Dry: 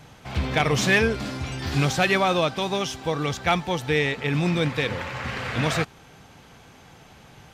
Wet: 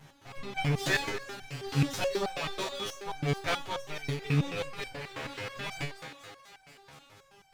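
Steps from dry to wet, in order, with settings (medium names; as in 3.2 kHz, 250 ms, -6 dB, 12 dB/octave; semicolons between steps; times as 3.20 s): comb filter that takes the minimum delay 7.4 ms; thinning echo 242 ms, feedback 73%, high-pass 250 Hz, level -12.5 dB; resonator arpeggio 9.3 Hz 73–770 Hz; trim +3.5 dB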